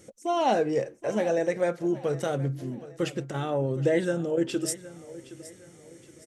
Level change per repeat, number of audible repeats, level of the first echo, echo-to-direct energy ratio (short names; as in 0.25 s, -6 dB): -8.5 dB, 3, -17.0 dB, -16.5 dB